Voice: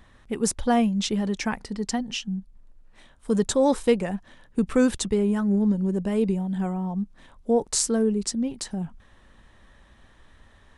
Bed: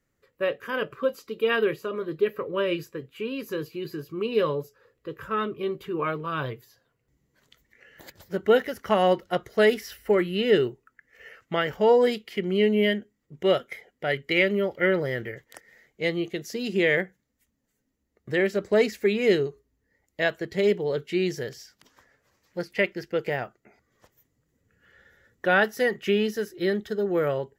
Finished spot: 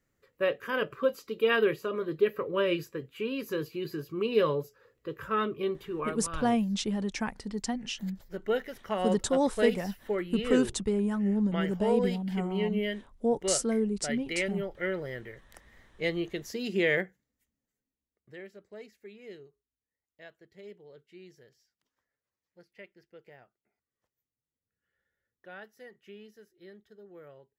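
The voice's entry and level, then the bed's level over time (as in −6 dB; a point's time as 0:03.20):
5.75 s, −5.5 dB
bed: 0:05.64 −1.5 dB
0:06.27 −9.5 dB
0:15.37 −9.5 dB
0:15.94 −4 dB
0:17.12 −4 dB
0:18.66 −25.5 dB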